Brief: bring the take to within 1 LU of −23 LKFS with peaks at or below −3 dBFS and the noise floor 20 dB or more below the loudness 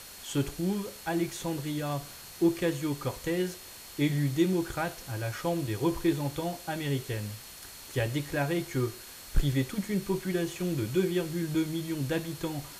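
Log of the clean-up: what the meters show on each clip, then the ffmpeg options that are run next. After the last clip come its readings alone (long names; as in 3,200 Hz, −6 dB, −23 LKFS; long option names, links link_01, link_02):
interfering tone 4,300 Hz; level of the tone −54 dBFS; background noise floor −47 dBFS; target noise floor −51 dBFS; integrated loudness −31.0 LKFS; sample peak −14.5 dBFS; target loudness −23.0 LKFS
→ -af "bandreject=frequency=4300:width=30"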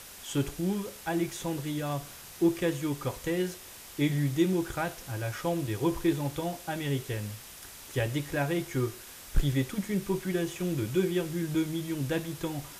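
interfering tone none found; background noise floor −47 dBFS; target noise floor −52 dBFS
→ -af "afftdn=noise_reduction=6:noise_floor=-47"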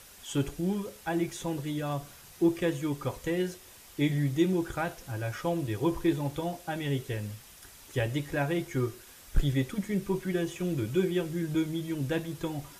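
background noise floor −52 dBFS; integrated loudness −31.5 LKFS; sample peak −15.0 dBFS; target loudness −23.0 LKFS
→ -af "volume=8.5dB"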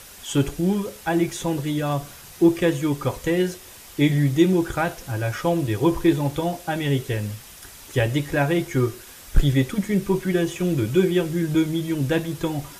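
integrated loudness −23.0 LKFS; sample peak −6.5 dBFS; background noise floor −44 dBFS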